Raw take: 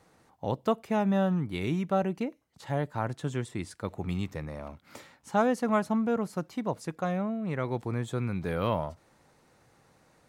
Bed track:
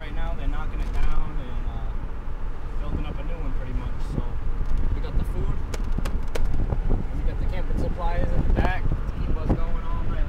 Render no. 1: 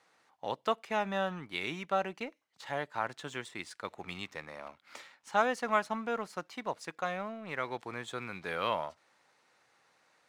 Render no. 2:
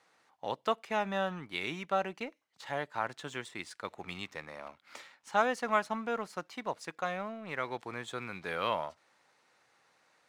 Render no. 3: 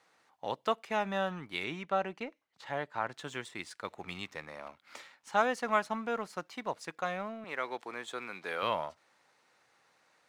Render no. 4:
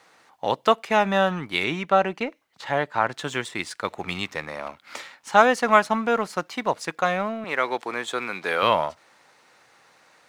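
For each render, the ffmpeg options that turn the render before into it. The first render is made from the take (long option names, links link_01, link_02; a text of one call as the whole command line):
ffmpeg -i in.wav -filter_complex "[0:a]bandpass=frequency=2600:width_type=q:width=0.56:csg=0,asplit=2[link_01][link_02];[link_02]aeval=exprs='sgn(val(0))*max(abs(val(0))-0.00168,0)':channel_layout=same,volume=-4dB[link_03];[link_01][link_03]amix=inputs=2:normalize=0" out.wav
ffmpeg -i in.wav -af anull out.wav
ffmpeg -i in.wav -filter_complex "[0:a]asettb=1/sr,asplit=3[link_01][link_02][link_03];[link_01]atrim=end=1.644[link_04];[link_02]atrim=start=1.64:end=3.14,asetpts=PTS-STARTPTS,afade=type=in:duration=0.004:curve=qsin,afade=type=out:start_time=1.496:duration=0.004:curve=qsin,highshelf=frequency=5500:gain=-9.5[link_05];[link_03]atrim=start=3.136[link_06];[link_04][link_05]acrossfade=duration=0.004:curve1=hsin:curve2=qsin[link_07];[link_07][link_06]acrossfade=duration=0.004:curve1=qsin:curve2=hsin,asettb=1/sr,asplit=3[link_08][link_09][link_10];[link_08]atrim=end=7.444[link_11];[link_09]atrim=start=7.44:end=8.63,asetpts=PTS-STARTPTS,afade=type=in:duration=0.004:curve=qsin,afade=type=out:start_time=1.186:duration=0.004:curve=qsin,highpass=280[link_12];[link_10]atrim=start=8.626[link_13];[link_11][link_12]acrossfade=duration=0.004:curve1=hsin:curve2=qsin[link_14];[link_14][link_13]acrossfade=duration=0.004:curve1=qsin:curve2=hsin" out.wav
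ffmpeg -i in.wav -af "volume=12dB" out.wav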